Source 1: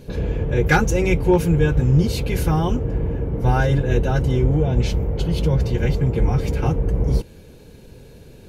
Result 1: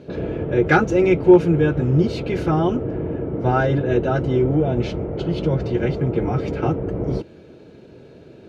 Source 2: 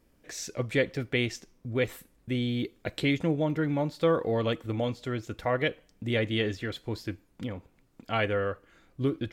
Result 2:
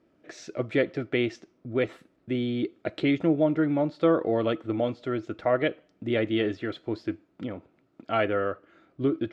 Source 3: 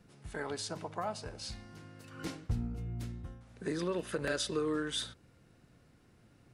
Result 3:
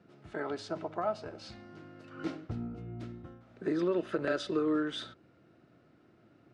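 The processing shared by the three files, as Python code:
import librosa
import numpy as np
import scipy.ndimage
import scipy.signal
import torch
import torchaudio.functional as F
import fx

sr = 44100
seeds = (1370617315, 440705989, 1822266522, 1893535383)

y = fx.bandpass_edges(x, sr, low_hz=110.0, high_hz=3900.0)
y = fx.small_body(y, sr, hz=(340.0, 630.0, 1300.0), ring_ms=25, db=9)
y = y * librosa.db_to_amplitude(-1.5)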